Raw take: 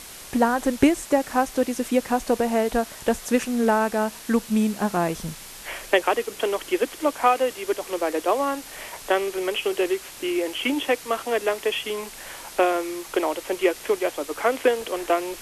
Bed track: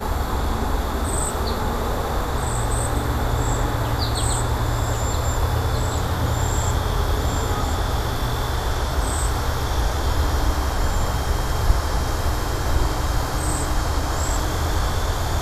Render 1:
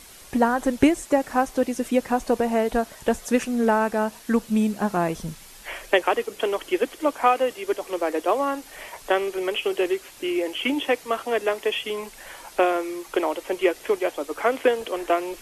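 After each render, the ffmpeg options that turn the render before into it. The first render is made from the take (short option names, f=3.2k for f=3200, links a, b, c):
-af "afftdn=nr=7:nf=-41"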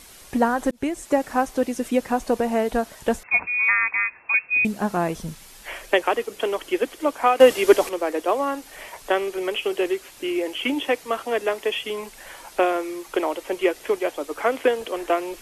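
-filter_complex "[0:a]asettb=1/sr,asplit=3[a][b][c];[a]atrim=end=3.234[d];[b]atrim=start=3.23:end=4.65,asetpts=PTS-STARTPTS,afade=t=in:d=0.004:c=qsin,afade=t=out:st=1.416:d=0.004:c=qsin,lowpass=f=2.3k:t=q:w=0.5098,lowpass=f=2.3k:t=q:w=0.6013,lowpass=f=2.3k:t=q:w=0.9,lowpass=f=2.3k:t=q:w=2.563,afreqshift=-2700[e];[c]atrim=start=4.646[f];[d][e]acrossfade=d=0.004:c1=hsin:c2=qsin[g];[g][f]acrossfade=d=0.004:c1=qsin:c2=hsin,asplit=4[h][i][j][k];[h]atrim=end=0.71,asetpts=PTS-STARTPTS,afade=t=out:st=0.706:d=0.004:c=hsin[l];[i]atrim=start=0.71:end=7.402,asetpts=PTS-STARTPTS,afade=t=in:d=0.4[m];[j]atrim=start=7.398:end=7.892,asetpts=PTS-STARTPTS,volume=11dB[n];[k]atrim=start=7.888[o];[l][m]concat=n=2:v=0:a=1[p];[p][n]acrossfade=d=0.004:c1=hsin:c2=hsin[q];[q][o]acrossfade=d=0.004:c1=hsin:c2=hsin"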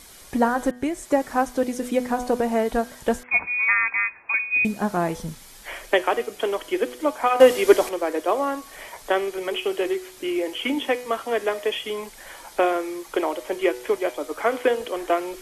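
-af "bandreject=f=2.7k:w=14,bandreject=f=123.5:t=h:w=4,bandreject=f=247:t=h:w=4,bandreject=f=370.5:t=h:w=4,bandreject=f=494:t=h:w=4,bandreject=f=617.5:t=h:w=4,bandreject=f=741:t=h:w=4,bandreject=f=864.5:t=h:w=4,bandreject=f=988:t=h:w=4,bandreject=f=1.1115k:t=h:w=4,bandreject=f=1.235k:t=h:w=4,bandreject=f=1.3585k:t=h:w=4,bandreject=f=1.482k:t=h:w=4,bandreject=f=1.6055k:t=h:w=4,bandreject=f=1.729k:t=h:w=4,bandreject=f=1.8525k:t=h:w=4,bandreject=f=1.976k:t=h:w=4,bandreject=f=2.0995k:t=h:w=4,bandreject=f=2.223k:t=h:w=4,bandreject=f=2.3465k:t=h:w=4,bandreject=f=2.47k:t=h:w=4,bandreject=f=2.5935k:t=h:w=4,bandreject=f=2.717k:t=h:w=4,bandreject=f=2.8405k:t=h:w=4,bandreject=f=2.964k:t=h:w=4,bandreject=f=3.0875k:t=h:w=4,bandreject=f=3.211k:t=h:w=4,bandreject=f=3.3345k:t=h:w=4"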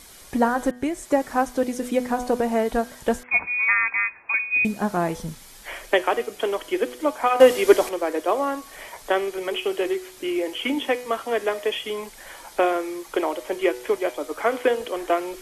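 -af anull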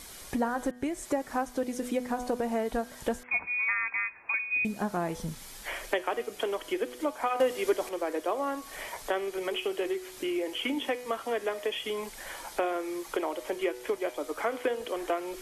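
-af "acompressor=threshold=-33dB:ratio=2"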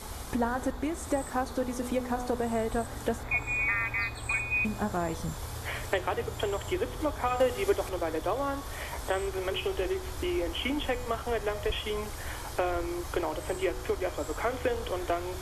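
-filter_complex "[1:a]volume=-18dB[a];[0:a][a]amix=inputs=2:normalize=0"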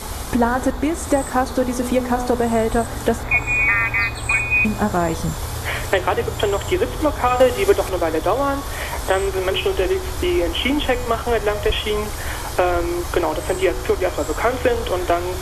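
-af "volume=11.5dB,alimiter=limit=-3dB:level=0:latency=1"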